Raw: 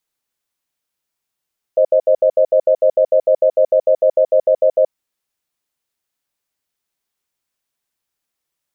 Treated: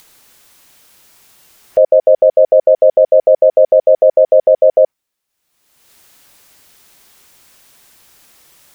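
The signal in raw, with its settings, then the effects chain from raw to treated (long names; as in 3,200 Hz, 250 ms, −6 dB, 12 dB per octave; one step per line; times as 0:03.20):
tone pair in a cadence 526 Hz, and 622 Hz, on 0.08 s, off 0.07 s, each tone −11.5 dBFS 3.13 s
noise reduction from a noise print of the clip's start 7 dB
upward compression, threshold −35 dBFS
boost into a limiter +10 dB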